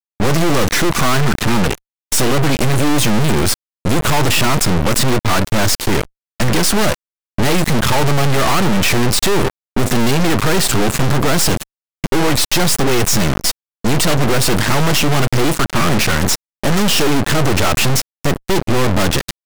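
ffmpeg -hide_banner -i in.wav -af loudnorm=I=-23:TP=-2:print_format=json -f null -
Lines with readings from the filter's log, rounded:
"input_i" : "-15.8",
"input_tp" : "-5.5",
"input_lra" : "0.9",
"input_thresh" : "-25.9",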